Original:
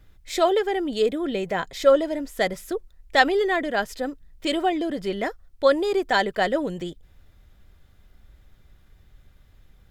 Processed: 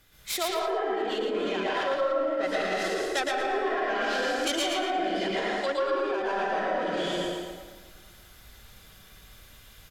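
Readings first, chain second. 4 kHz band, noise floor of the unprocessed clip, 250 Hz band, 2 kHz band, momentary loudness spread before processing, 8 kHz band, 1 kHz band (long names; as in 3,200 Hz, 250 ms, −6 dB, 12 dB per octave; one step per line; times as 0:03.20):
−0.5 dB, −56 dBFS, −6.0 dB, −3.5 dB, 13 LU, +3.0 dB, −2.5 dB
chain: stylus tracing distortion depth 0.35 ms
dense smooth reverb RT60 1.5 s, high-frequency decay 0.8×, pre-delay 110 ms, DRR −8.5 dB
treble cut that deepens with the level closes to 1,500 Hz, closed at −10 dBFS
notch filter 1,800 Hz, Q 25
reversed playback
downward compressor 6 to 1, threshold −21 dBFS, peak gain reduction 13.5 dB
reversed playback
brickwall limiter −19 dBFS, peak gain reduction 6.5 dB
spectral tilt +3 dB per octave
repeating echo 113 ms, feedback 23%, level −5 dB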